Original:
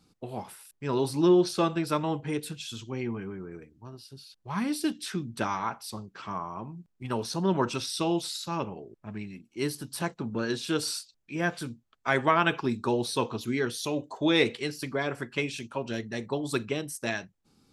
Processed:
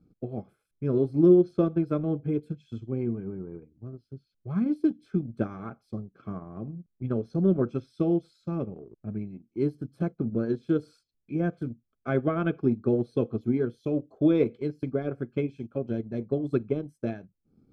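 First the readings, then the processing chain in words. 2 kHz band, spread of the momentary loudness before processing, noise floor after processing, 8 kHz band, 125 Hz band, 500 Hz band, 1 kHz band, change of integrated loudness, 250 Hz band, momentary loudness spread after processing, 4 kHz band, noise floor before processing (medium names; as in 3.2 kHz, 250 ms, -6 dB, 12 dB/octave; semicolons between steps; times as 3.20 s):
-12.0 dB, 16 LU, -78 dBFS, under -30 dB, +4.5 dB, +2.0 dB, -11.0 dB, +1.5 dB, +4.0 dB, 15 LU, under -20 dB, -74 dBFS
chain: boxcar filter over 47 samples; transient shaper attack +3 dB, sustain -7 dB; trim +4.5 dB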